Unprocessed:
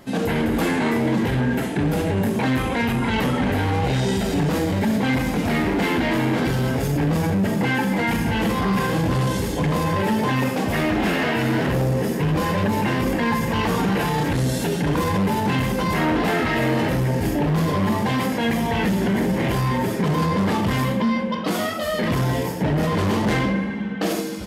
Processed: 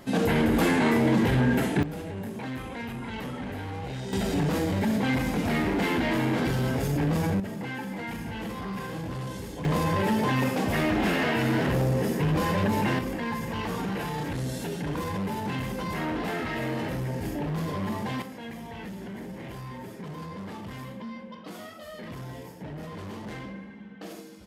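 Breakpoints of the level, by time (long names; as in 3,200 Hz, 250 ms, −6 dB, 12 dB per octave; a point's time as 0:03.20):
−1.5 dB
from 0:01.83 −14 dB
from 0:04.13 −5 dB
from 0:07.40 −13.5 dB
from 0:09.65 −4 dB
from 0:12.99 −10 dB
from 0:18.22 −18 dB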